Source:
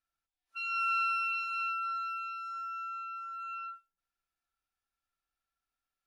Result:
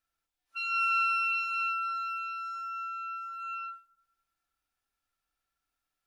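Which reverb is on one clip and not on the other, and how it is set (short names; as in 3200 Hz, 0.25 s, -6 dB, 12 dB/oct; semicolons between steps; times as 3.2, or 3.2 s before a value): FDN reverb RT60 1.2 s, high-frequency decay 0.35×, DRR 10.5 dB; gain +4 dB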